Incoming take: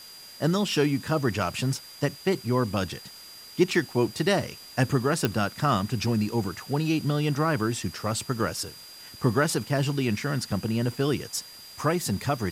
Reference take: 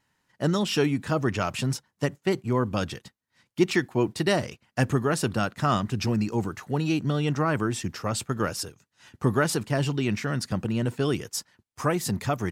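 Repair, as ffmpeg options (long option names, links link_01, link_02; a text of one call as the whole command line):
ffmpeg -i in.wav -af "adeclick=threshold=4,bandreject=frequency=4800:width=30,afwtdn=0.004" out.wav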